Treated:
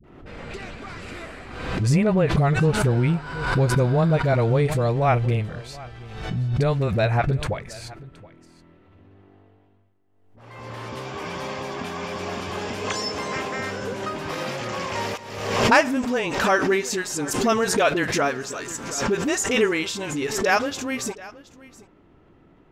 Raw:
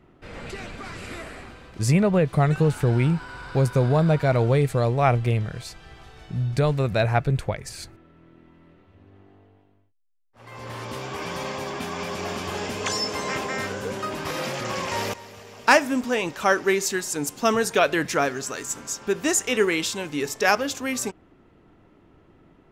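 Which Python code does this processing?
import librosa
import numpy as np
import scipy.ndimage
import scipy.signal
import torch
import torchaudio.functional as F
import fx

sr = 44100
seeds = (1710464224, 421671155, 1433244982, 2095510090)

p1 = fx.high_shelf(x, sr, hz=8700.0, db=-10.5)
p2 = fx.dispersion(p1, sr, late='highs', ms=40.0, hz=430.0)
p3 = p2 + fx.echo_single(p2, sr, ms=723, db=-20.0, dry=0)
y = fx.pre_swell(p3, sr, db_per_s=52.0)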